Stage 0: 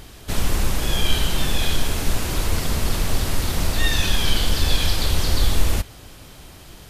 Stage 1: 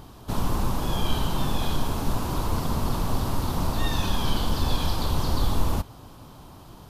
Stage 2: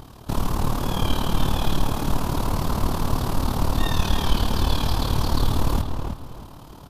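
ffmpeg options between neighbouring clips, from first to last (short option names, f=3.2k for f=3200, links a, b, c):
-af "equalizer=f=125:t=o:w=1:g=6,equalizer=f=250:t=o:w=1:g=6,equalizer=f=1k:t=o:w=1:g=12,equalizer=f=2k:t=o:w=1:g=-9,equalizer=f=8k:t=o:w=1:g=-5,volume=-6.5dB"
-filter_complex "[0:a]tremolo=f=37:d=0.75,asplit=2[a][b];[b]adelay=319,lowpass=f=3.2k:p=1,volume=-5.5dB,asplit=2[c][d];[d]adelay=319,lowpass=f=3.2k:p=1,volume=0.26,asplit=2[e][f];[f]adelay=319,lowpass=f=3.2k:p=1,volume=0.26[g];[a][c][e][g]amix=inputs=4:normalize=0,volume=5dB"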